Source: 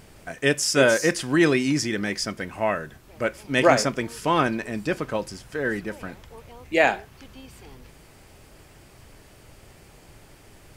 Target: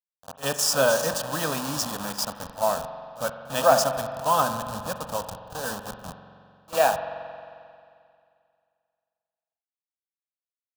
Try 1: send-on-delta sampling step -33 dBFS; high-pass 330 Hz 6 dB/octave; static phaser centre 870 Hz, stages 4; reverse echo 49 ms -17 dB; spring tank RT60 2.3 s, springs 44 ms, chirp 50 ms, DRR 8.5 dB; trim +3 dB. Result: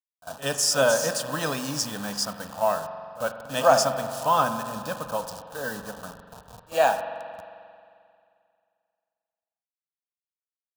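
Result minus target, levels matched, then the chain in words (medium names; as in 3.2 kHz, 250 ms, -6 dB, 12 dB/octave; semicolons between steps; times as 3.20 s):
send-on-delta sampling: distortion -11 dB
send-on-delta sampling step -24 dBFS; high-pass 330 Hz 6 dB/octave; static phaser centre 870 Hz, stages 4; reverse echo 49 ms -17 dB; spring tank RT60 2.3 s, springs 44 ms, chirp 50 ms, DRR 8.5 dB; trim +3 dB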